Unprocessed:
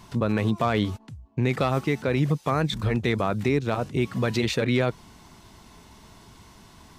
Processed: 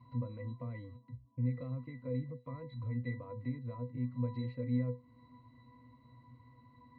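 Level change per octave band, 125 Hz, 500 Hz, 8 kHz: −10.5 dB, −19.0 dB, below −35 dB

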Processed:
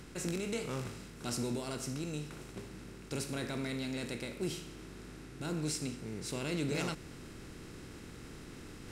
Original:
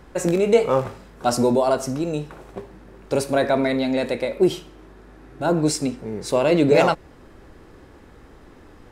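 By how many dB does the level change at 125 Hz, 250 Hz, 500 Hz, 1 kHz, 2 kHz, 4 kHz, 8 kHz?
−10.5, −15.5, −21.5, −22.0, −13.5, −10.0, −9.0 decibels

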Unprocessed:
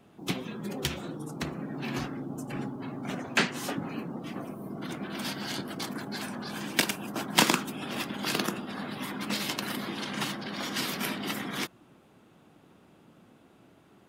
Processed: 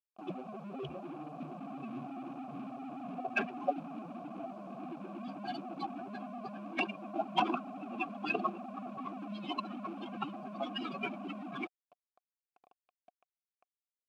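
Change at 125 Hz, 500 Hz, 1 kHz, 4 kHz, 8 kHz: −12.0 dB, −4.0 dB, −1.5 dB, −14.5 dB, below −30 dB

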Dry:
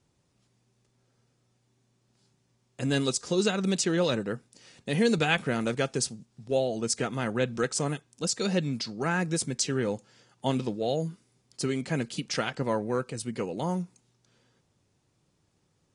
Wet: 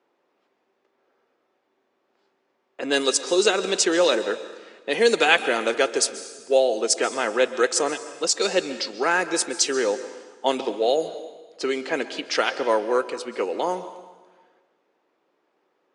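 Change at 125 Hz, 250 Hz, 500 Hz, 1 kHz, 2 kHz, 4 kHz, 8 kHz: below −15 dB, −0.5 dB, +8.0 dB, +8.5 dB, +8.5 dB, +8.5 dB, +7.5 dB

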